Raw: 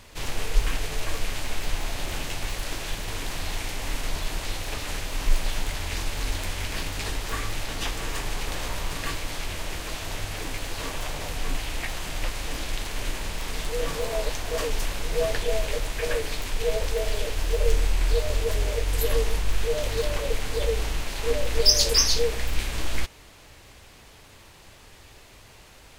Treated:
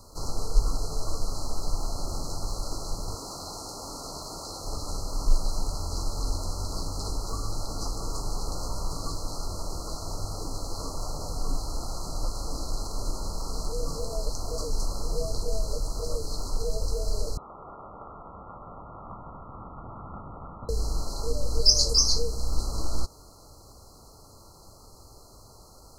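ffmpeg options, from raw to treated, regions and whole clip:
-filter_complex "[0:a]asettb=1/sr,asplit=3[a][b][c];[a]atrim=end=3.144[d];[b]atrim=start=3.14:end=4.64,asetpts=PTS-STARTPTS,afade=t=in:d=0.004:c=qsin,afade=t=out:st=1.496:d=0.004:c=qsin,highpass=f=250:p=1,aeval=exprs='0.0596*(abs(mod(val(0)/0.0596+3,4)-2)-1)':c=same[e];[c]atrim=start=4.636[f];[d][e]acrossfade=d=0.004:c1=hsin:c2=qsin[g];[g][f]acrossfade=d=0.004:c1=qsin:c2=hsin,asettb=1/sr,asplit=3[h][i][j];[h]atrim=end=17.374[k];[i]atrim=start=17.37:end=20.69,asetpts=PTS-STARTPTS,afade=t=in:d=0.004:c=qsin,afade=t=out:st=3.316:d=0.004:c=qsin,lowpass=f=2.4k:t=q:w=0.5098,lowpass=f=2.4k:t=q:w=0.6013,lowpass=f=2.4k:t=q:w=0.9,lowpass=f=2.4k:t=q:w=2.563,afreqshift=-2800,asubboost=boost=10:cutoff=160[l];[j]atrim=start=20.686[m];[k][l]acrossfade=d=0.004:c1=hsin:c2=qsin[n];[n][m]acrossfade=d=0.004:c1=qsin:c2=hsin,acrossover=split=9000[o][p];[p]acompressor=threshold=-55dB:ratio=4:attack=1:release=60[q];[o][q]amix=inputs=2:normalize=0,afftfilt=real='re*(1-between(b*sr/4096,1400,4000))':imag='im*(1-between(b*sr/4096,1400,4000))':win_size=4096:overlap=0.75,acrossover=split=280|3000[r][s][t];[s]acompressor=threshold=-39dB:ratio=2.5[u];[r][u][t]amix=inputs=3:normalize=0"

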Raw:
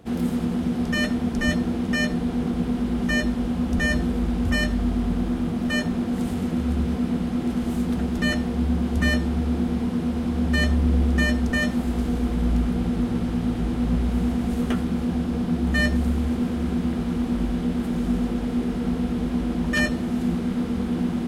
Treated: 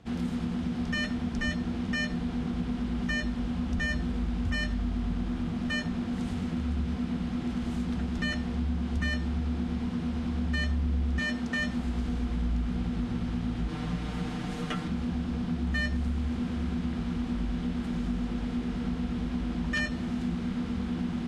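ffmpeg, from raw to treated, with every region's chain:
-filter_complex "[0:a]asettb=1/sr,asplit=3[a][b][c];[a]atrim=end=11.194[d];[b]atrim=start=11.19:end=11.59,asetpts=PTS-STARTPTS,afade=t=in:d=0.004:c=qsin,afade=t=out:st=0.396:d=0.004:c=qsin,highpass=150,asoftclip=type=hard:threshold=-16.5dB[e];[c]atrim=start=11.586[f];[d][e]acrossfade=d=0.004:c1=hsin:c2=qsin[g];[g][f]acrossfade=d=0.004:c1=qsin:c2=hsin,asettb=1/sr,asplit=3[h][i][j];[h]atrim=end=13.684[k];[i]atrim=start=13.68:end=14.88,asetpts=PTS-STARTPTS,afade=t=in:d=0.004:c=qsin,afade=t=out:st=1.196:d=0.004:c=qsin,lowshelf=f=190:g=-7,aecho=1:1:6.6:0.94,atrim=end_sample=52920[l];[j]atrim=start=14.876[m];[k][l]acrossfade=d=0.004:c1=hsin:c2=qsin[n];[n][m]acrossfade=d=0.004:c1=qsin:c2=hsin,lowpass=6.3k,equalizer=f=440:t=o:w=1.8:g=-8,acompressor=threshold=-25dB:ratio=2.5,volume=-2dB"

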